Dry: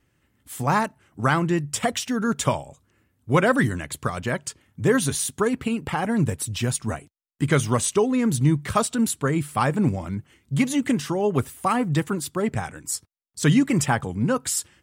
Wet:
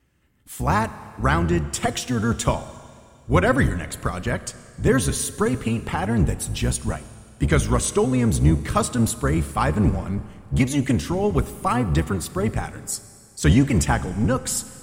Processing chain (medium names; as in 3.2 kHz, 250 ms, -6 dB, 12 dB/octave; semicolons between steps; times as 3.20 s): octave divider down 1 oct, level -1 dB; Schroeder reverb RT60 2.4 s, combs from 29 ms, DRR 14.5 dB